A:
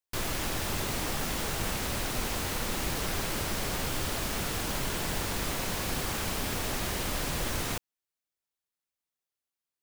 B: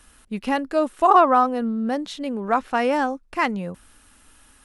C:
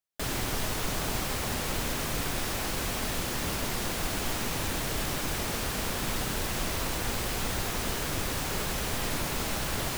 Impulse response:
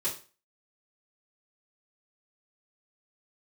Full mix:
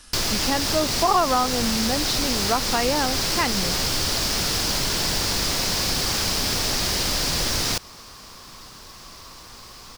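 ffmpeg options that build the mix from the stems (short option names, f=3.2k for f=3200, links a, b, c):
-filter_complex "[0:a]acontrast=50,volume=2.5dB[a];[1:a]volume=2.5dB[b];[2:a]equalizer=f=1.1k:w=4.1:g=11.5,adelay=2450,volume=-15.5dB[c];[a][b][c]amix=inputs=3:normalize=0,equalizer=f=5k:w=1.6:g=13,acompressor=threshold=-22dB:ratio=2"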